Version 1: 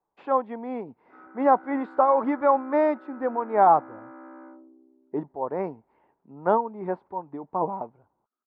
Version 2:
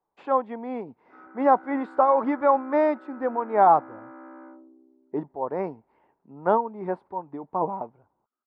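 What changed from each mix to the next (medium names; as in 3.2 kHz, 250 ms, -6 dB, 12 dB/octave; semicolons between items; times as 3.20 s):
master: remove distance through air 100 m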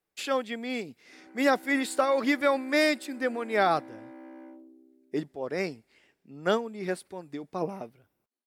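speech: remove resonant low-pass 940 Hz, resonance Q 6.3; background: remove resonant low-pass 1.3 kHz, resonance Q 9.4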